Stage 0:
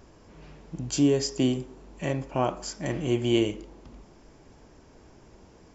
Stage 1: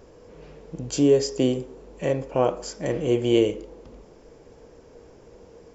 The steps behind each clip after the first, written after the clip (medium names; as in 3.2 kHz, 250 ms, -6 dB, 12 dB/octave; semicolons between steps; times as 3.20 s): peaking EQ 480 Hz +14.5 dB 0.42 oct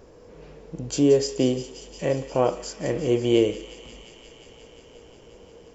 feedback echo behind a high-pass 177 ms, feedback 84%, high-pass 2.2 kHz, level -12 dB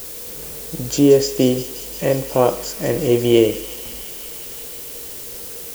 added noise blue -39 dBFS; trim +6 dB